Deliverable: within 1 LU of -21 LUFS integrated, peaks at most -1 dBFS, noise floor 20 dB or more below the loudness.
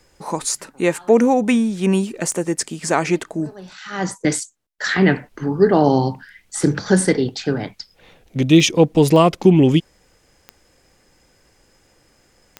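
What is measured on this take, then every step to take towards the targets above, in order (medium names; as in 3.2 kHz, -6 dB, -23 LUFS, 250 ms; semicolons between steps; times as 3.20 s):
clicks found 5; loudness -18.0 LUFS; peak level -1.0 dBFS; loudness target -21.0 LUFS
-> de-click; trim -3 dB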